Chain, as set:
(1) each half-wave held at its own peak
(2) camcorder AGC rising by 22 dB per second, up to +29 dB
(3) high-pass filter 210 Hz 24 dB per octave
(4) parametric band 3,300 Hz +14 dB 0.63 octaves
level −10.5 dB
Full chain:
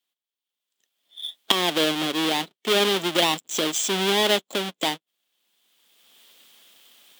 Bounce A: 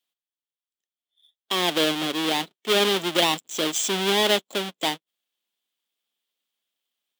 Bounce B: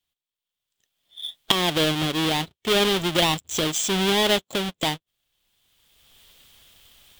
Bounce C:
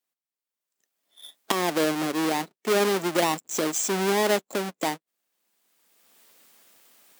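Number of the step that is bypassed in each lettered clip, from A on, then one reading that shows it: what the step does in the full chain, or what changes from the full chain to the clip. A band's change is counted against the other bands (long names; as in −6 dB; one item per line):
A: 2, change in crest factor −3.0 dB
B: 3, 125 Hz band +8.0 dB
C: 4, 4 kHz band −10.5 dB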